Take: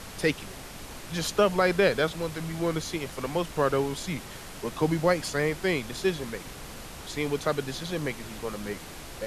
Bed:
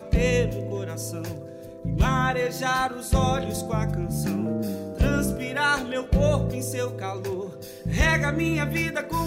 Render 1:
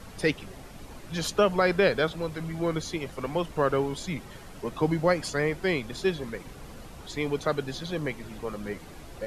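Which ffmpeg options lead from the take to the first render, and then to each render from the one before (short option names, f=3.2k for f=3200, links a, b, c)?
-af "afftdn=nr=9:nf=-42"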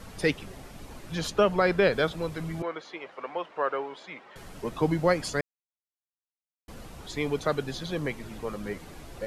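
-filter_complex "[0:a]asettb=1/sr,asplit=3[a][b][c];[a]atrim=end=1.154[d];[b]atrim=start=1.15:end=1.93,asetpts=PTS-STARTPTS,afade=t=in:d=0.004:c=qsin,afade=t=out:st=0.776:d=0.004:c=qsin,highshelf=f=5.4k:g=-6[e];[c]atrim=start=1.926[f];[d][e]acrossfade=d=0.004:c1=hsin:c2=qsin[g];[g][f]acrossfade=d=0.004:c1=qsin:c2=hsin,asettb=1/sr,asplit=3[h][i][j];[h]atrim=end=2.624[k];[i]atrim=start=2.62:end=4.36,asetpts=PTS-STARTPTS,afade=t=in:d=0.004:c=qsin,afade=t=out:st=1.736:d=0.004:c=qsin,highpass=580,lowpass=2.4k[l];[j]atrim=start=4.356[m];[k][l]acrossfade=d=0.004:c1=hsin:c2=qsin[n];[n][m]acrossfade=d=0.004:c1=qsin:c2=hsin,asplit=3[o][p][q];[o]atrim=end=5.41,asetpts=PTS-STARTPTS,afade=t=out:st=5.406:d=0.004:c=hsin[r];[p]atrim=start=5.41:end=6.68,asetpts=PTS-STARTPTS,volume=0[s];[q]atrim=start=6.68,asetpts=PTS-STARTPTS,afade=t=in:d=0.004:c=hsin[t];[r][s][t]concat=n=3:v=0:a=1"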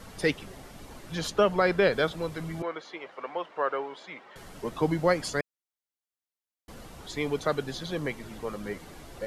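-af "lowshelf=f=170:g=-3.5,bandreject=f=2.5k:w=23"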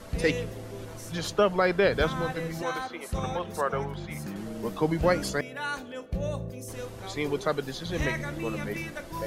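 -filter_complex "[1:a]volume=-10.5dB[a];[0:a][a]amix=inputs=2:normalize=0"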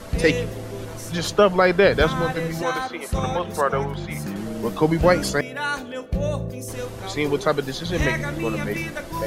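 -af "volume=7dB"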